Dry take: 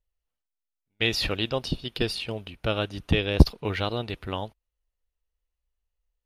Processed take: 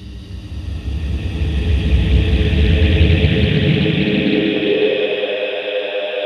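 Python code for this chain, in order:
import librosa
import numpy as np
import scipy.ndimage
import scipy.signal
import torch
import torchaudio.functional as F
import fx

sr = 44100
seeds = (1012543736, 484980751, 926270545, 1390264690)

p1 = fx.paulstretch(x, sr, seeds[0], factor=24.0, window_s=0.25, from_s=3.01)
p2 = fx.filter_sweep_highpass(p1, sr, from_hz=63.0, to_hz=590.0, start_s=2.83, end_s=5.15, q=4.7)
p3 = p2 + fx.echo_feedback(p2, sr, ms=194, feedback_pct=56, wet_db=-6.0, dry=0)
p4 = fx.doppler_dist(p3, sr, depth_ms=0.31)
y = F.gain(torch.from_numpy(p4), 3.0).numpy()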